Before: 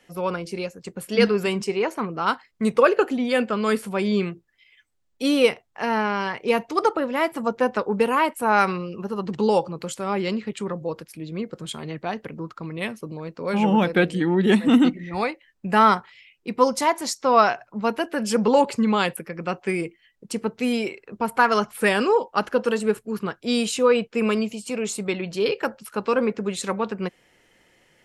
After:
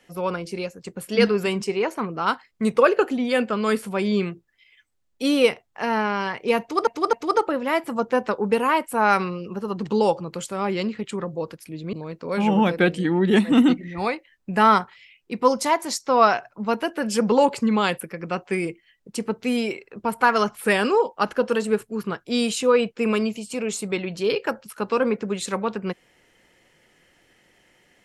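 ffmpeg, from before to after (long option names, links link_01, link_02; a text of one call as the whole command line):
ffmpeg -i in.wav -filter_complex "[0:a]asplit=4[link_01][link_02][link_03][link_04];[link_01]atrim=end=6.872[link_05];[link_02]atrim=start=6.608:end=6.872[link_06];[link_03]atrim=start=6.608:end=11.412[link_07];[link_04]atrim=start=13.088[link_08];[link_05][link_06]acrossfade=duration=0.004:curve1=hsin:curve2=hsin[link_09];[link_09][link_07]acrossfade=duration=0.004:curve1=hsin:curve2=hsin[link_10];[link_10][link_08]acrossfade=duration=0.004:curve1=hsin:curve2=hsin" out.wav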